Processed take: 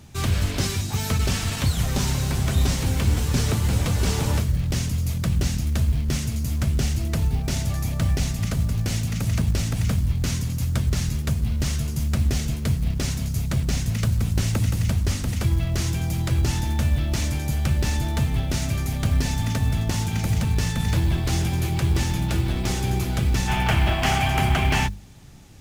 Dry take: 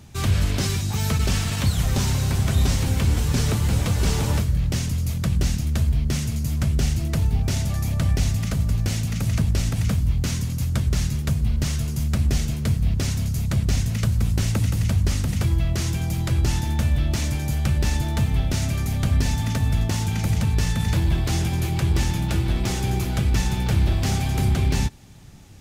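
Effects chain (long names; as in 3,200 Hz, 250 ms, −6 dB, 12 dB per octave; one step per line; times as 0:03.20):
gain on a spectral selection 0:23.48–0:24.87, 600–3,400 Hz +10 dB
mains-hum notches 50/100/150/200 Hz
floating-point word with a short mantissa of 4 bits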